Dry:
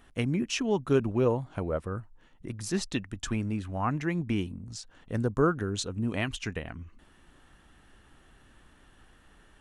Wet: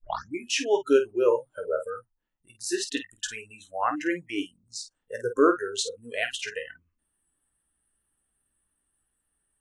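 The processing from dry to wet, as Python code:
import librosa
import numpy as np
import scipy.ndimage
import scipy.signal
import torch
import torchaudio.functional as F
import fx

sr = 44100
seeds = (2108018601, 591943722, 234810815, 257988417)

y = fx.tape_start_head(x, sr, length_s=0.35)
y = fx.room_early_taps(y, sr, ms=(17, 50), db=(-9.5, -9.0))
y = fx.noise_reduce_blind(y, sr, reduce_db=30)
y = y * librosa.db_to_amplitude(4.5)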